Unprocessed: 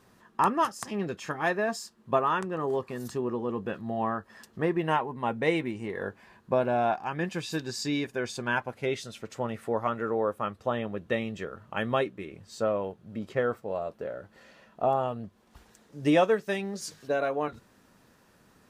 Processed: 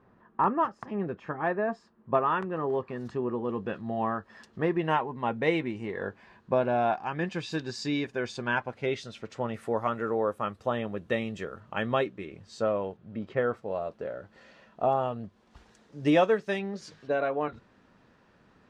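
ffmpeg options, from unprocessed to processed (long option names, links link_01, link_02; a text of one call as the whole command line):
ffmpeg -i in.wav -af "asetnsamples=nb_out_samples=441:pad=0,asendcmd='2.15 lowpass f 2700;3.45 lowpass f 5100;9.54 lowpass f 11000;11.6 lowpass f 6200;12.97 lowpass f 3200;13.54 lowpass f 5900;16.59 lowpass f 3500',lowpass=1500" out.wav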